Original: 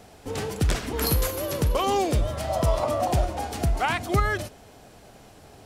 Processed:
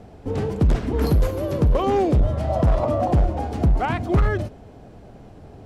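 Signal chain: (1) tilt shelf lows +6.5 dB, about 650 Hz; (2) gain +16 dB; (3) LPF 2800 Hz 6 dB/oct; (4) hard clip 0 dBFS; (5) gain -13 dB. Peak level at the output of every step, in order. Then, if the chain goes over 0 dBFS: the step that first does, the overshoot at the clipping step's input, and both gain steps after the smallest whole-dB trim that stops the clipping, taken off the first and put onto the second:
-7.5, +8.5, +8.5, 0.0, -13.0 dBFS; step 2, 8.5 dB; step 2 +7 dB, step 5 -4 dB

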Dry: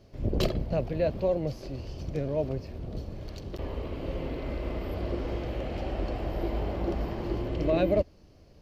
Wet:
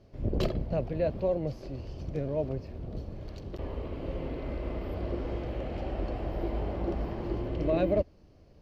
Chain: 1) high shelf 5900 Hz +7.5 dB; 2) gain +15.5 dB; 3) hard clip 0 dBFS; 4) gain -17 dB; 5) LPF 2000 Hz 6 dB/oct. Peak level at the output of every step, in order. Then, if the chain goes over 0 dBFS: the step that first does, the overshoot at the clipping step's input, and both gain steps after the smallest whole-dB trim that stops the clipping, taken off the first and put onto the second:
-12.0, +3.5, 0.0, -17.0, -17.0 dBFS; step 2, 3.5 dB; step 2 +11.5 dB, step 4 -13 dB

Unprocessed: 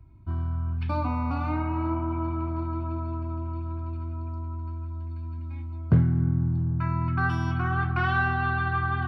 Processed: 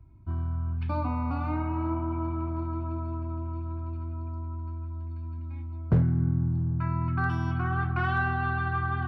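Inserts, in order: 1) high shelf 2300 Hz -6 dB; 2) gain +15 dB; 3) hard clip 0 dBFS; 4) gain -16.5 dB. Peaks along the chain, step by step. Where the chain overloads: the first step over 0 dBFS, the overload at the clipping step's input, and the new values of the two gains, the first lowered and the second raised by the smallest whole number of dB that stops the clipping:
-11.5, +3.5, 0.0, -16.5 dBFS; step 2, 3.5 dB; step 2 +11 dB, step 4 -12.5 dB

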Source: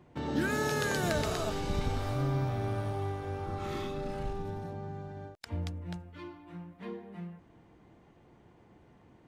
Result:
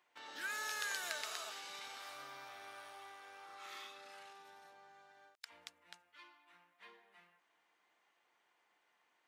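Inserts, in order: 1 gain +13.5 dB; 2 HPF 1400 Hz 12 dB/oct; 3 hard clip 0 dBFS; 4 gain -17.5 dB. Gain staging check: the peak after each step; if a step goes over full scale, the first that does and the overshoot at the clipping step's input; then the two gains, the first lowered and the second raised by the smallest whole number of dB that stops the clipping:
-2.5, -5.5, -5.5, -23.0 dBFS; no overload

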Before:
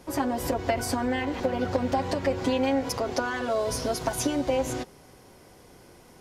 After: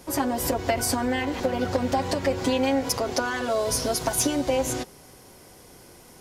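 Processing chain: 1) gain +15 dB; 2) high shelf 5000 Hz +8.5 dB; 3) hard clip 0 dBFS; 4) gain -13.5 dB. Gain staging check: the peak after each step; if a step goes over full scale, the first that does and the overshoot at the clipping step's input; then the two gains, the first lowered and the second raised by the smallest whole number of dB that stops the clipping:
+2.0, +3.5, 0.0, -13.5 dBFS; step 1, 3.5 dB; step 1 +11 dB, step 4 -9.5 dB

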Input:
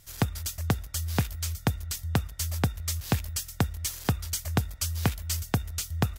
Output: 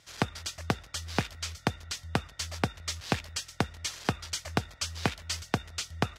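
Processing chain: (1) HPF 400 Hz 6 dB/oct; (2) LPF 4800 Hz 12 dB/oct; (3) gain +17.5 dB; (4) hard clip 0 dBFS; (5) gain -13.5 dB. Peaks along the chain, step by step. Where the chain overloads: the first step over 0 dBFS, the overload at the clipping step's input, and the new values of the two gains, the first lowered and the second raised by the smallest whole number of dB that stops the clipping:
-12.0, -12.0, +5.5, 0.0, -13.5 dBFS; step 3, 5.5 dB; step 3 +11.5 dB, step 5 -7.5 dB

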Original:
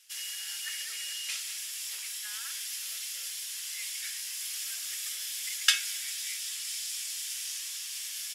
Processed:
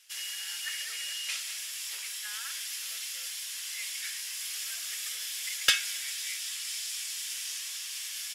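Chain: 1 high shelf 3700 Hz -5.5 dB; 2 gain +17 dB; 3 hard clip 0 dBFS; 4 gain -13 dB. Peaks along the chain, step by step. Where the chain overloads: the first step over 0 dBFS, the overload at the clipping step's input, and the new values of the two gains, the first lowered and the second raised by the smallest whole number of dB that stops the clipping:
-8.0, +9.0, 0.0, -13.0 dBFS; step 2, 9.0 dB; step 2 +8 dB, step 4 -4 dB

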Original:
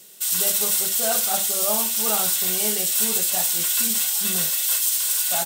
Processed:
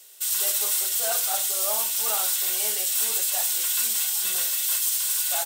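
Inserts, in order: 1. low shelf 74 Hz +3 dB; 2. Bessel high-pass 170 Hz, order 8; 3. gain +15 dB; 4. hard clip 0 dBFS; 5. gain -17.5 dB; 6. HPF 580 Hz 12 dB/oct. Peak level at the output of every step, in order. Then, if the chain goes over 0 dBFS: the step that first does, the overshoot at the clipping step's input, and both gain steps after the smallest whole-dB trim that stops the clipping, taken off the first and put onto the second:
-7.5, -7.5, +7.5, 0.0, -17.5, -13.0 dBFS; step 3, 7.5 dB; step 3 +7 dB, step 5 -9.5 dB

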